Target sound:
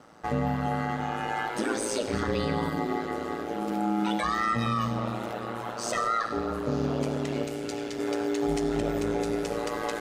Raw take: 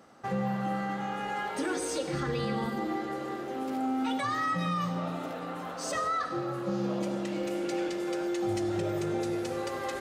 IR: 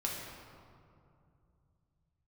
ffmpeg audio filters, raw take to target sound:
-filter_complex "[0:a]aeval=exprs='val(0)*sin(2*PI*56*n/s)':channel_layout=same,asettb=1/sr,asplit=3[link_01][link_02][link_03];[link_01]atrim=end=7.434[link_04];[link_02]atrim=start=7.43:end=7.99,asetpts=PTS-STARTPTS,afade=type=in:duration=0.004:curve=qsin,afade=type=out:start_time=0.556:duration=0.004:curve=qsin,acrossover=split=170|3000[link_05][link_06][link_07];[link_06]acompressor=threshold=-39dB:ratio=3[link_08];[link_05][link_08][link_07]amix=inputs=3:normalize=0[link_09];[link_03]atrim=start=7.986[link_10];[link_04][link_09]acrossfade=duration=0.004:curve1=hsin:curve2=qsin[link_11];[link_11][link_10]acrossfade=duration=0.004:curve1=qsin:curve2=hsin,volume=6dB"

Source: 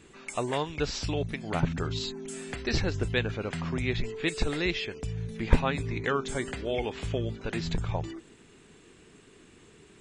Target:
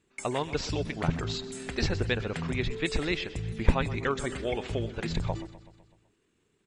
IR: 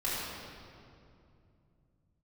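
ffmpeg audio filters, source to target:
-filter_complex "[0:a]agate=range=-17dB:threshold=-42dB:ratio=16:detection=peak,atempo=1.5,asplit=2[link_01][link_02];[link_02]aecho=0:1:126|252|378|504|630|756:0.158|0.0919|0.0533|0.0309|0.0179|0.0104[link_03];[link_01][link_03]amix=inputs=2:normalize=0"

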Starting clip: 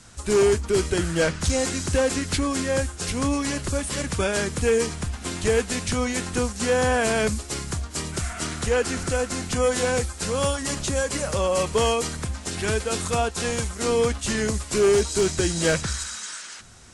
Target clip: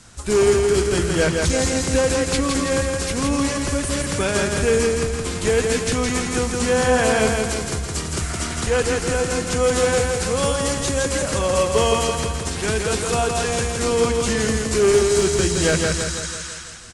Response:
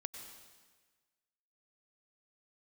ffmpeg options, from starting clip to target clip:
-af "aecho=1:1:166|332|498|664|830|996|1162:0.668|0.361|0.195|0.105|0.0568|0.0307|0.0166,volume=2dB"

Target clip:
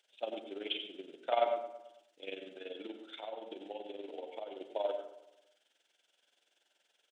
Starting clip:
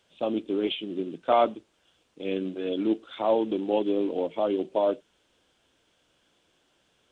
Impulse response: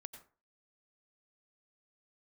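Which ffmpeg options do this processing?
-filter_complex "[0:a]highpass=680,equalizer=frequency=1100:width_type=o:width=0.39:gain=-13.5,asplit=3[link_01][link_02][link_03];[link_01]afade=type=out:start_time=2.36:duration=0.02[link_04];[link_02]acompressor=threshold=-36dB:ratio=6,afade=type=in:start_time=2.36:duration=0.02,afade=type=out:start_time=4.59:duration=0.02[link_05];[link_03]afade=type=in:start_time=4.59:duration=0.02[link_06];[link_04][link_05][link_06]amix=inputs=3:normalize=0,tremolo=f=21:d=0.75,asplit=2[link_07][link_08];[link_08]adelay=110,lowpass=frequency=2700:poles=1,volume=-13.5dB,asplit=2[link_09][link_10];[link_10]adelay=110,lowpass=frequency=2700:poles=1,volume=0.52,asplit=2[link_11][link_12];[link_12]adelay=110,lowpass=frequency=2700:poles=1,volume=0.52,asplit=2[link_13][link_14];[link_14]adelay=110,lowpass=frequency=2700:poles=1,volume=0.52,asplit=2[link_15][link_16];[link_16]adelay=110,lowpass=frequency=2700:poles=1,volume=0.52[link_17];[link_07][link_09][link_11][link_13][link_15][link_17]amix=inputs=6:normalize=0[link_18];[1:a]atrim=start_sample=2205[link_19];[link_18][link_19]afir=irnorm=-1:irlink=0,volume=4dB"

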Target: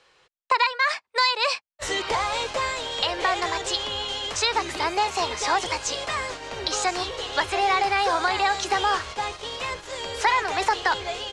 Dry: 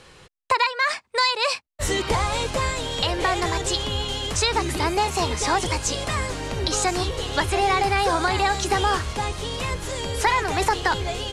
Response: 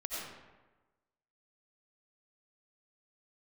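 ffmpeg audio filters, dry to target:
-filter_complex "[0:a]agate=range=-9dB:threshold=-29dB:ratio=16:detection=peak,acrossover=split=410 7600:gain=0.178 1 0.112[link_01][link_02][link_03];[link_01][link_02][link_03]amix=inputs=3:normalize=0"

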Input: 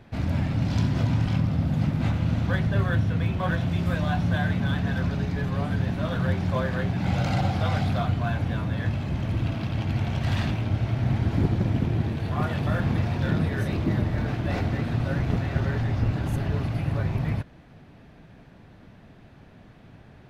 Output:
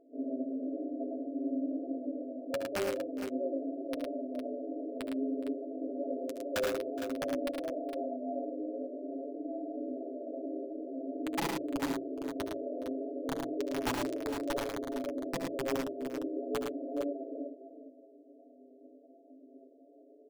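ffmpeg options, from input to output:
ffmpeg -i in.wav -filter_complex "[0:a]flanger=delay=15:depth=5.1:speed=0.19,afftfilt=real='re*between(b*sr/4096,250,690)':imag='im*between(b*sr/4096,250,690)':win_size=4096:overlap=0.75,aecho=1:1:7.2:0.73,aeval=exprs='(mod(18.8*val(0)+1,2)-1)/18.8':channel_layout=same,flanger=delay=5.8:depth=4.1:regen=-12:speed=0.52:shape=triangular,bandreject=frequency=60:width_type=h:width=6,bandreject=frequency=120:width_type=h:width=6,bandreject=frequency=180:width_type=h:width=6,bandreject=frequency=240:width_type=h:width=6,bandreject=frequency=300:width_type=h:width=6,bandreject=frequency=360:width_type=h:width=6,asplit=2[link_01][link_02];[link_02]aecho=0:1:64|74|109|418|459:0.133|0.335|0.596|0.133|0.355[link_03];[link_01][link_03]amix=inputs=2:normalize=0,volume=2dB" out.wav

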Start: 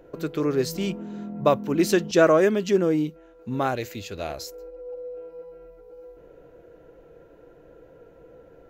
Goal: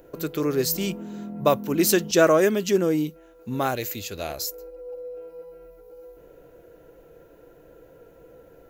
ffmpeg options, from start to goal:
ffmpeg -i in.wav -af "aemphasis=mode=production:type=50fm" out.wav

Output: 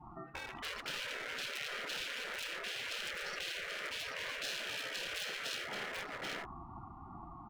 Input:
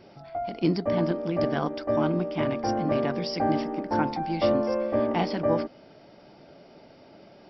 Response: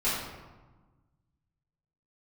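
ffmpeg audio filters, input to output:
-filter_complex "[0:a]highpass=150,lowpass=2100,afftdn=noise_reduction=25:noise_floor=-47,adynamicequalizer=threshold=0.0126:dfrequency=490:dqfactor=1.6:tfrequency=490:tqfactor=1.6:attack=5:release=100:ratio=0.375:range=3:mode=boostabove:tftype=bell,acrossover=split=210|1600[link_01][link_02][link_03];[link_03]aeval=exprs='(mod(53.1*val(0)+1,2)-1)/53.1':channel_layout=same[link_04];[link_01][link_02][link_04]amix=inputs=3:normalize=0,aeval=exprs='val(0)*sin(2*PI*520*n/s)':channel_layout=same,asoftclip=type=hard:threshold=-29dB,asplit=2[link_05][link_06];[link_06]aecho=0:1:81|785:0.178|0.501[link_07];[link_05][link_07]amix=inputs=2:normalize=0,afftfilt=real='re*lt(hypot(re,im),0.0224)':imag='im*lt(hypot(re,im),0.0224)':win_size=1024:overlap=0.75,volume=5.5dB"

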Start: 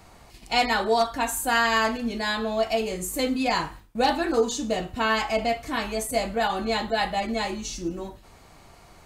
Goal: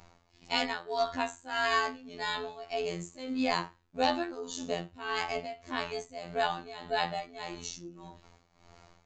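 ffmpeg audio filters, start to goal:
ffmpeg -i in.wav -af "aresample=16000,aresample=44100,afftfilt=real='hypot(re,im)*cos(PI*b)':imag='0':win_size=2048:overlap=0.75,tremolo=f=1.7:d=0.82,volume=-1.5dB" out.wav

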